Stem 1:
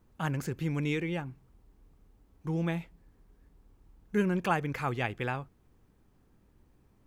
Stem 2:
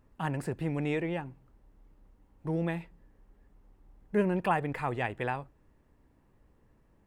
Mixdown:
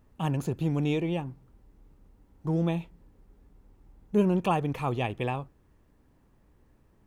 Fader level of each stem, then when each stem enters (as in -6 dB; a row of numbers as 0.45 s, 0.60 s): -2.0 dB, -0.5 dB; 0.00 s, 0.00 s